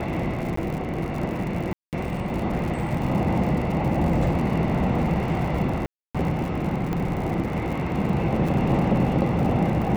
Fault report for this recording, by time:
crackle 100 per s -31 dBFS
0.56–0.57 s: dropout
1.73–1.93 s: dropout 198 ms
5.86–6.15 s: dropout 286 ms
6.93 s: pop -16 dBFS
8.48–8.49 s: dropout 5.1 ms

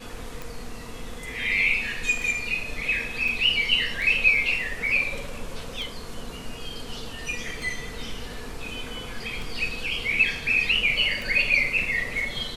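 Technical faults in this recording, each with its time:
tick 33 1/3 rpm
3.28 s: dropout 3.3 ms

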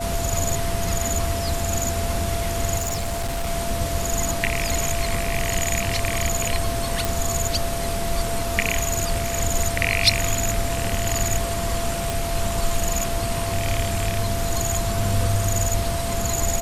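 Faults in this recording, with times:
whine 680 Hz -28 dBFS
2.77–3.49 s: clipped -21.5 dBFS
7.05 s: pop
12.10 s: pop

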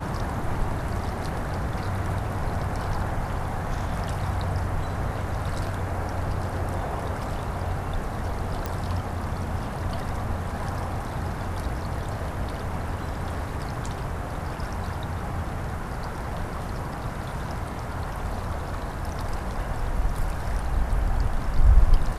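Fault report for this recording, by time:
8.66 s: pop -14 dBFS

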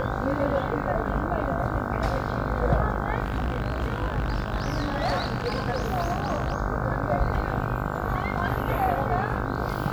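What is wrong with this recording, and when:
buzz 50 Hz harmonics 31 -31 dBFS
3.23–6.54 s: clipped -21 dBFS

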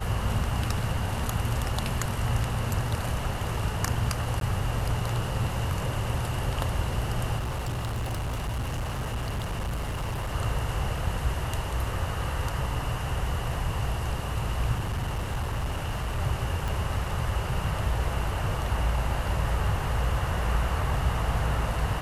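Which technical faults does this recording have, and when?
4.40–4.41 s: dropout 12 ms
7.38–10.36 s: clipped -27 dBFS
14.74–16.20 s: clipped -25 dBFS
16.68 s: pop

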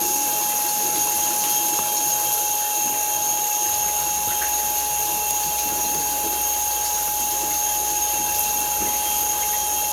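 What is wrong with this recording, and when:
whine 840 Hz -26 dBFS
5.36–7.65 s: clipped -17 dBFS

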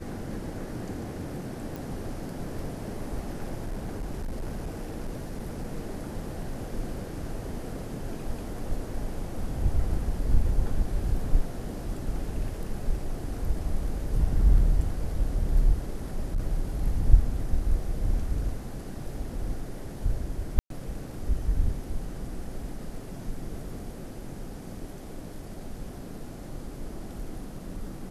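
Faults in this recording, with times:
1.76 s: pop
3.60–5.66 s: clipped -28.5 dBFS
16.17–16.39 s: clipped -22.5 dBFS
20.59–20.70 s: dropout 112 ms

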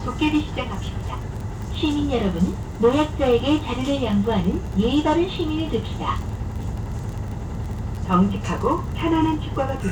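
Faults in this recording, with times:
crackle 26 per s -29 dBFS

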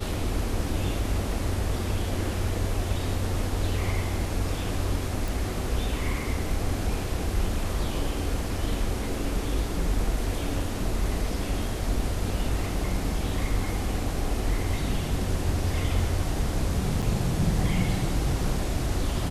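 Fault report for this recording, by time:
5.28 s: pop
17.02–17.03 s: dropout 6.8 ms

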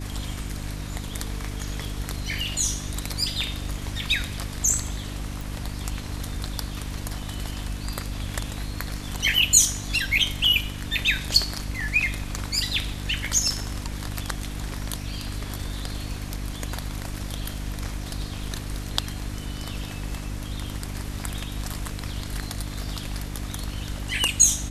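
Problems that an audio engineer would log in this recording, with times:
hum 50 Hz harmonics 6 -33 dBFS
5.41 s: pop

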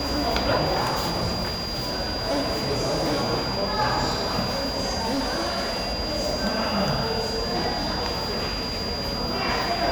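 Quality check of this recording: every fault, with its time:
whine 4.8 kHz -30 dBFS
0.81–3.24 s: clipped -20 dBFS
4.99–5.94 s: clipped -21.5 dBFS

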